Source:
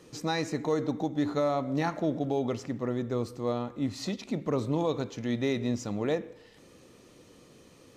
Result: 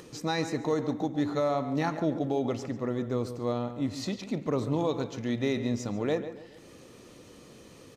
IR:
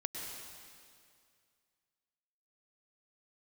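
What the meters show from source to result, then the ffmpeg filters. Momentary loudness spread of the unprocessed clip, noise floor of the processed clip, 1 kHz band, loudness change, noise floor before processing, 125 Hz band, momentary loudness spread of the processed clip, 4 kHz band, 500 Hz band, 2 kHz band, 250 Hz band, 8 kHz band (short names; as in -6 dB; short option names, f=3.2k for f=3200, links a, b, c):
5 LU, -52 dBFS, +0.5 dB, +0.5 dB, -56 dBFS, +0.5 dB, 5 LU, 0.0 dB, 0.0 dB, +0.5 dB, +0.5 dB, 0.0 dB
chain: -filter_complex "[0:a]asplit=2[a][b];[b]adelay=141,lowpass=f=3.4k:p=1,volume=-11.5dB,asplit=2[c][d];[d]adelay=141,lowpass=f=3.4k:p=1,volume=0.39,asplit=2[e][f];[f]adelay=141,lowpass=f=3.4k:p=1,volume=0.39,asplit=2[g][h];[h]adelay=141,lowpass=f=3.4k:p=1,volume=0.39[i];[c][e][g][i]amix=inputs=4:normalize=0[j];[a][j]amix=inputs=2:normalize=0,acompressor=mode=upward:threshold=-44dB:ratio=2.5"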